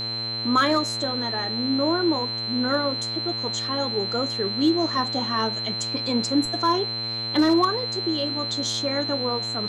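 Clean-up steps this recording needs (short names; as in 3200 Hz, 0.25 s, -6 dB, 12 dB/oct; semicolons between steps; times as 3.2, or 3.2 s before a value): clip repair -12 dBFS; de-hum 114.3 Hz, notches 35; notch 4100 Hz, Q 30; expander -21 dBFS, range -21 dB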